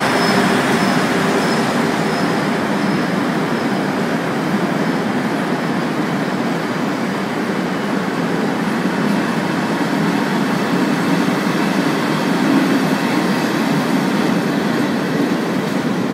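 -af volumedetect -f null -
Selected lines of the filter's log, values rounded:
mean_volume: -17.0 dB
max_volume: -2.2 dB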